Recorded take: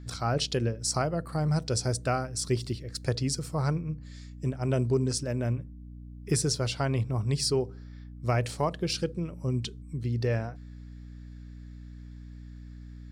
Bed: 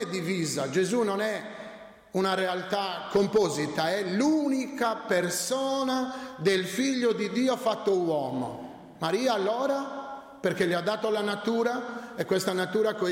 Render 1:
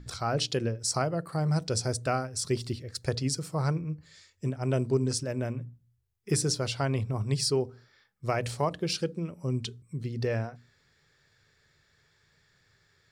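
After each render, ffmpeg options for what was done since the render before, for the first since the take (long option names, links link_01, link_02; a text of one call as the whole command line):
ffmpeg -i in.wav -af "bandreject=frequency=60:width_type=h:width=6,bandreject=frequency=120:width_type=h:width=6,bandreject=frequency=180:width_type=h:width=6,bandreject=frequency=240:width_type=h:width=6,bandreject=frequency=300:width_type=h:width=6" out.wav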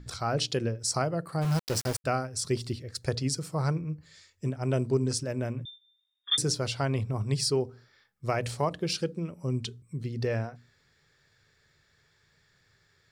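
ffmpeg -i in.wav -filter_complex "[0:a]asplit=3[link_01][link_02][link_03];[link_01]afade=type=out:start_time=1.41:duration=0.02[link_04];[link_02]aeval=exprs='val(0)*gte(abs(val(0)),0.0282)':channel_layout=same,afade=type=in:start_time=1.41:duration=0.02,afade=type=out:start_time=2.04:duration=0.02[link_05];[link_03]afade=type=in:start_time=2.04:duration=0.02[link_06];[link_04][link_05][link_06]amix=inputs=3:normalize=0,asettb=1/sr,asplit=3[link_07][link_08][link_09];[link_07]atrim=end=5.654[link_10];[link_08]atrim=start=5.65:end=6.38,asetpts=PTS-STARTPTS,afade=type=in:duration=0.004:curve=qsin,afade=type=out:start_time=0.726:duration=0.004:curve=qsin,lowpass=frequency=3100:width_type=q:width=0.5098,lowpass=frequency=3100:width_type=q:width=0.6013,lowpass=frequency=3100:width_type=q:width=0.9,lowpass=frequency=3100:width_type=q:width=2.563,afreqshift=-3700[link_11];[link_09]atrim=start=6.376[link_12];[link_10][link_11]acrossfade=duration=0.004:curve1=hsin:curve2=qsin[link_13];[link_13][link_12]acrossfade=duration=0.004:curve1=qsin:curve2=hsin" out.wav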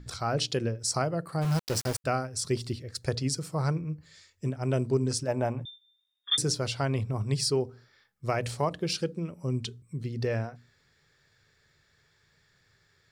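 ffmpeg -i in.wav -filter_complex "[0:a]asettb=1/sr,asplit=3[link_01][link_02][link_03];[link_01]atrim=end=5.284[link_04];[link_02]atrim=start=5.28:end=5.68,asetpts=PTS-STARTPTS,afade=type=in:duration=0.004:curve=qsin,afade=type=out:start_time=0.396:duration=0.004:curve=qsin,equalizer=frequency=810:width_type=o:width=0.77:gain=15[link_05];[link_03]atrim=start=5.676[link_06];[link_04][link_05]acrossfade=duration=0.004:curve1=hsin:curve2=qsin[link_07];[link_07][link_06]acrossfade=duration=0.004:curve1=qsin:curve2=hsin" out.wav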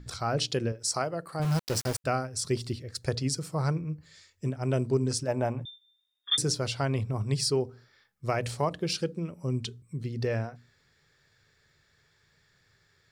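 ffmpeg -i in.wav -filter_complex "[0:a]asettb=1/sr,asplit=3[link_01][link_02][link_03];[link_01]atrim=end=0.724[link_04];[link_02]atrim=start=0.72:end=1.4,asetpts=PTS-STARTPTS,afade=type=in:duration=0.004:curve=qsin,afade=type=out:start_time=0.676:duration=0.004:curve=qsin,equalizer=frequency=110:width_type=o:width=2.5:gain=-8.5[link_05];[link_03]atrim=start=1.396[link_06];[link_04][link_05]acrossfade=duration=0.004:curve1=hsin:curve2=qsin[link_07];[link_07][link_06]acrossfade=duration=0.004:curve1=qsin:curve2=hsin" out.wav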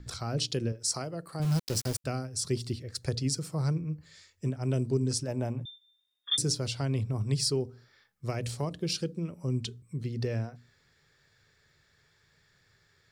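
ffmpeg -i in.wav -filter_complex "[0:a]acrossover=split=400|3000[link_01][link_02][link_03];[link_02]acompressor=threshold=-47dB:ratio=2[link_04];[link_01][link_04][link_03]amix=inputs=3:normalize=0" out.wav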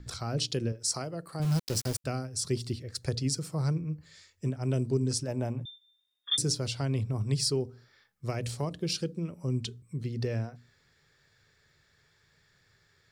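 ffmpeg -i in.wav -af anull out.wav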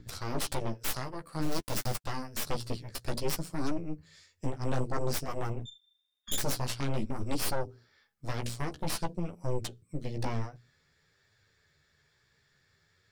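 ffmpeg -i in.wav -af "aeval=exprs='0.188*(cos(1*acos(clip(val(0)/0.188,-1,1)))-cos(1*PI/2))+0.0841*(cos(3*acos(clip(val(0)/0.188,-1,1)))-cos(3*PI/2))+0.0266*(cos(5*acos(clip(val(0)/0.188,-1,1)))-cos(5*PI/2))+0.0376*(cos(7*acos(clip(val(0)/0.188,-1,1)))-cos(7*PI/2))+0.0473*(cos(8*acos(clip(val(0)/0.188,-1,1)))-cos(8*PI/2))':channel_layout=same,flanger=delay=9.3:depth=6.8:regen=-13:speed=0.53:shape=triangular" out.wav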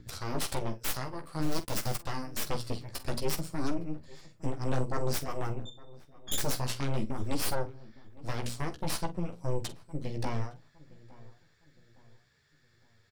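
ffmpeg -i in.wav -filter_complex "[0:a]asplit=2[link_01][link_02];[link_02]adelay=46,volume=-14dB[link_03];[link_01][link_03]amix=inputs=2:normalize=0,asplit=2[link_04][link_05];[link_05]adelay=861,lowpass=frequency=1600:poles=1,volume=-20.5dB,asplit=2[link_06][link_07];[link_07]adelay=861,lowpass=frequency=1600:poles=1,volume=0.42,asplit=2[link_08][link_09];[link_09]adelay=861,lowpass=frequency=1600:poles=1,volume=0.42[link_10];[link_04][link_06][link_08][link_10]amix=inputs=4:normalize=0" out.wav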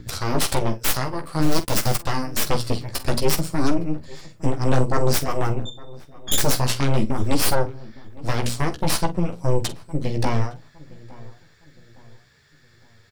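ffmpeg -i in.wav -af "volume=11.5dB" out.wav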